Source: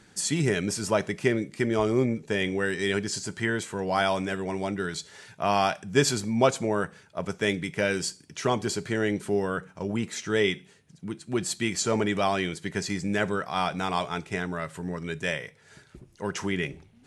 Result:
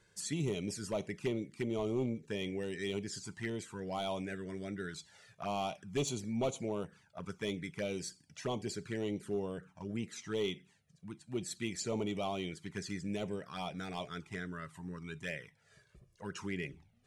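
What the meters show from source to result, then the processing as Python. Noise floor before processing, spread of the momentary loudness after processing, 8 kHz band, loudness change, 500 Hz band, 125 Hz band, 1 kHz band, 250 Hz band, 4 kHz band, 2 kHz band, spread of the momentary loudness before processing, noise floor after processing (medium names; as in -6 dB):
-58 dBFS, 9 LU, -12.0 dB, -11.5 dB, -11.0 dB, -9.5 dB, -14.0 dB, -10.0 dB, -11.5 dB, -15.0 dB, 9 LU, -70 dBFS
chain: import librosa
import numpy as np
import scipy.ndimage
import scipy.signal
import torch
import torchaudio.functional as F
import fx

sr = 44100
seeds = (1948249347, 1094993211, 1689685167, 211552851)

y = np.clip(10.0 ** (17.5 / 20.0) * x, -1.0, 1.0) / 10.0 ** (17.5 / 20.0)
y = fx.env_flanger(y, sr, rest_ms=2.0, full_db=-22.5)
y = F.gain(torch.from_numpy(y), -9.0).numpy()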